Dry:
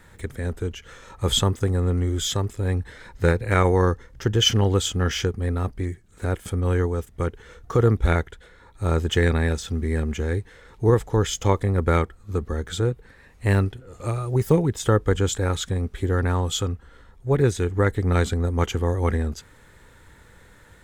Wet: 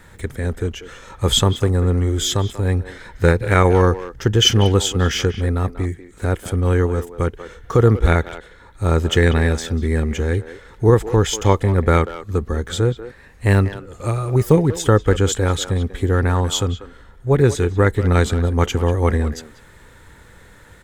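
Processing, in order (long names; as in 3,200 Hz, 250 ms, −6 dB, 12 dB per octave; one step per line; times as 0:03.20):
far-end echo of a speakerphone 190 ms, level −12 dB
level +5 dB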